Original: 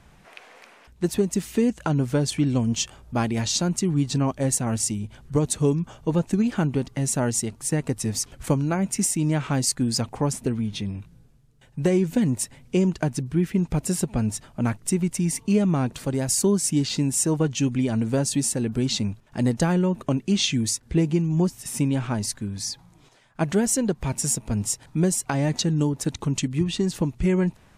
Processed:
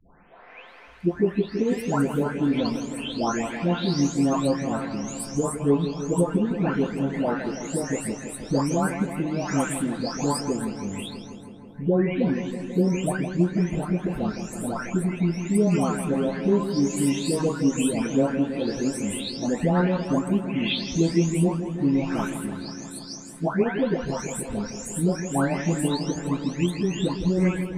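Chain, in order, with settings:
every frequency bin delayed by itself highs late, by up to 674 ms
bass and treble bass −8 dB, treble −13 dB
feedback echo with a low-pass in the loop 163 ms, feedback 77%, low-pass 2,900 Hz, level −10 dB
on a send at −8 dB: convolution reverb RT60 0.20 s, pre-delay 4 ms
on the sum: level +3.5 dB

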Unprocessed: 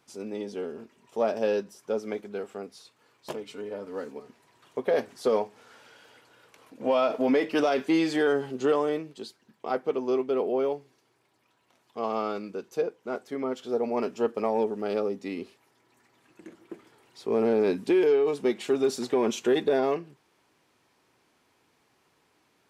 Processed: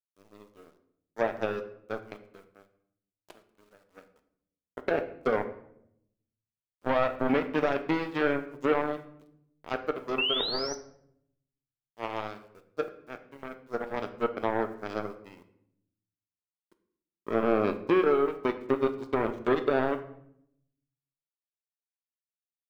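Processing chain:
power curve on the samples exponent 3
in parallel at −2.5 dB: brickwall limiter −22.5 dBFS, peak gain reduction 7 dB
on the sum: sound drawn into the spectrogram rise, 0:10.18–0:10.75, 2,600–6,100 Hz −23 dBFS
treble cut that deepens with the level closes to 2,400 Hz, closed at −25 dBFS
bit reduction 11 bits
on a send at −8 dB: convolution reverb RT60 0.75 s, pre-delay 3 ms

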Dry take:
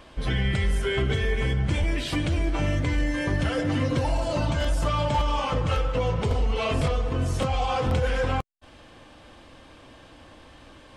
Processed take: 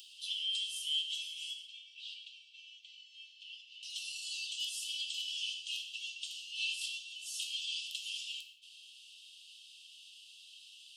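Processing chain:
Chebyshev high-pass filter 2,700 Hz, order 8
upward compression, threshold −51 dBFS
0:01.65–0:03.83: head-to-tape spacing loss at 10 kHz 34 dB
tape delay 119 ms, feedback 69%, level −18.5 dB, low-pass 5,400 Hz
reverb whose tail is shaped and stops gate 200 ms falling, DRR 4.5 dB

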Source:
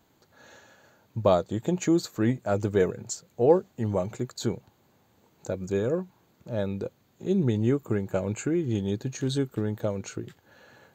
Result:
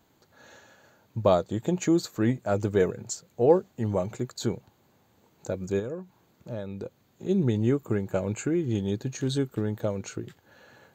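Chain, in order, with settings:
0:05.79–0:07.29: downward compressor 10 to 1, threshold −31 dBFS, peak gain reduction 9.5 dB

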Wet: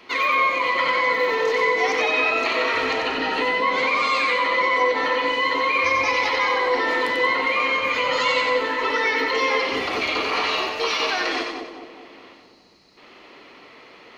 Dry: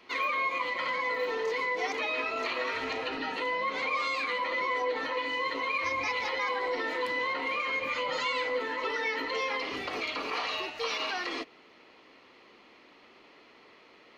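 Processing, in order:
gain on a spectral selection 0:12.34–0:12.97, 210–3,800 Hz −14 dB
echo with a time of its own for lows and highs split 890 Hz, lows 209 ms, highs 92 ms, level −4 dB
level +8.5 dB

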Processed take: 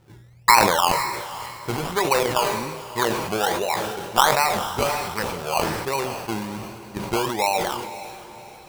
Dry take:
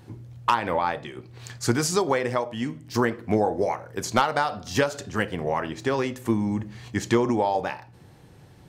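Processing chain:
adaptive Wiener filter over 25 samples
low-pass that shuts in the quiet parts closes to 620 Hz, open at −22 dBFS
graphic EQ with 15 bands 100 Hz −7 dB, 250 Hz −11 dB, 1,000 Hz +10 dB
sample-and-hold swept by an LFO 19×, swing 60% 1.3 Hz
feedback delay with all-pass diffusion 527 ms, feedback 47%, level −13 dB
on a send at −19.5 dB: convolution reverb RT60 0.95 s, pre-delay 5 ms
on the sum: level that may fall only so fast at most 39 dB per second
level −1.5 dB

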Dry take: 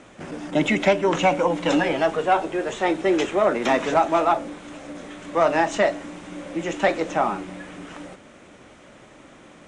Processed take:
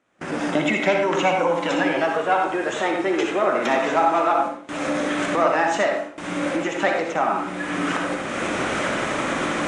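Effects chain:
camcorder AGC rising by 30 dB per second
parametric band 1,500 Hz +4.5 dB 1.1 octaves
noise gate with hold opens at −19 dBFS
low-shelf EQ 76 Hz −11.5 dB
on a send: convolution reverb RT60 0.50 s, pre-delay 55 ms, DRR 2 dB
on the sum: level −3 dB

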